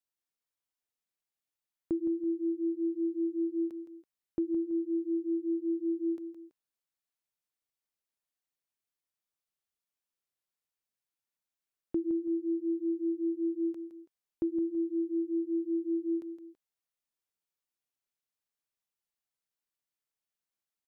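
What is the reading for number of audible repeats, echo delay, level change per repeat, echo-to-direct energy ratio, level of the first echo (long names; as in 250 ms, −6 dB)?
2, 165 ms, −9.5 dB, −9.5 dB, −10.0 dB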